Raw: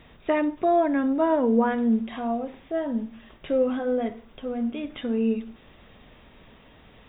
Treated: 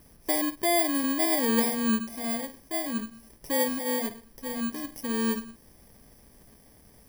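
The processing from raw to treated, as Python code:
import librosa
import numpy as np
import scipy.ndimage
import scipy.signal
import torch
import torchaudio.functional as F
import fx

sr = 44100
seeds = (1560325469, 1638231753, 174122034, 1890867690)

y = fx.bit_reversed(x, sr, seeds[0], block=32)
y = F.gain(torch.from_numpy(y), -3.5).numpy()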